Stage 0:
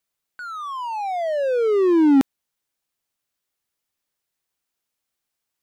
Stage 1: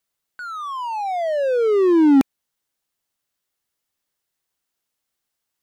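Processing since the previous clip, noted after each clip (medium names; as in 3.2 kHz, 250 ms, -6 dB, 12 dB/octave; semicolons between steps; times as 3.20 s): band-stop 2.4 kHz, Q 21; trim +1.5 dB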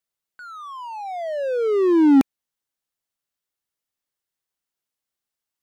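upward expansion 1.5:1, over -25 dBFS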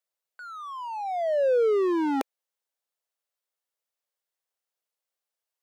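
ladder high-pass 420 Hz, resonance 40%; trim +5 dB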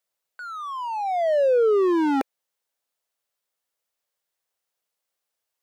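saturation -19.5 dBFS, distortion -20 dB; trim +5.5 dB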